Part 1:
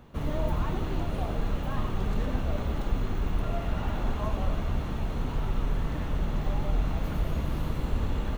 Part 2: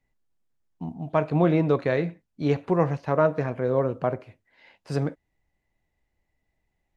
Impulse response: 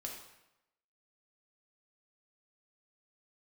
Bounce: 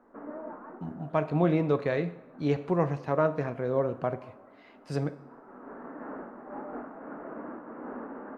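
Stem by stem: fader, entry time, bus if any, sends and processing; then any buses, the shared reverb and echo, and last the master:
+0.5 dB, 0.00 s, send -14.5 dB, elliptic band-pass 250–1600 Hz, stop band 40 dB; noise-modulated level, depth 60%; auto duck -21 dB, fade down 1.85 s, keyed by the second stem
-6.0 dB, 0.00 s, send -7.5 dB, dry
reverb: on, RT60 0.90 s, pre-delay 3 ms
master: dry

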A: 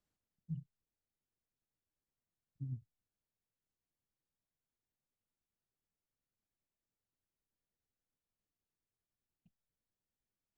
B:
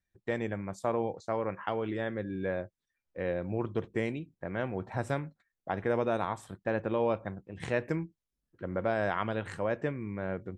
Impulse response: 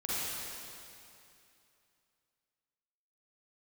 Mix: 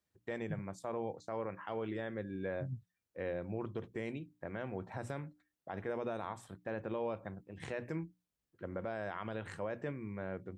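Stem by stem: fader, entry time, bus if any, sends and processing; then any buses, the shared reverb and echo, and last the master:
+1.0 dB, 0.00 s, no send, dry
-5.0 dB, 0.00 s, no send, notches 60/120/180/240/300 Hz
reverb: off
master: HPF 58 Hz; limiter -28 dBFS, peak gain reduction 7 dB

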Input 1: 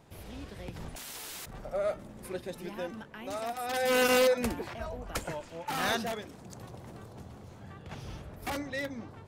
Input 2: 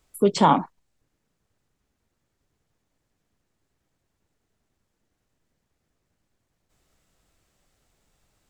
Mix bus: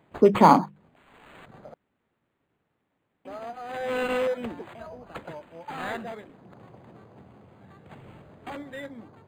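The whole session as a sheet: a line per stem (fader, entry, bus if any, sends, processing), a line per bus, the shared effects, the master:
-1.5 dB, 0.00 s, muted 1.74–3.25, no send, steep low-pass 6800 Hz 48 dB/oct; auto duck -17 dB, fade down 0.50 s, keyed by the second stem
+3.0 dB, 0.00 s, no send, notches 50/100/150/200 Hz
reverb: off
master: HPF 130 Hz 12 dB/oct; decimation joined by straight lines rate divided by 8×

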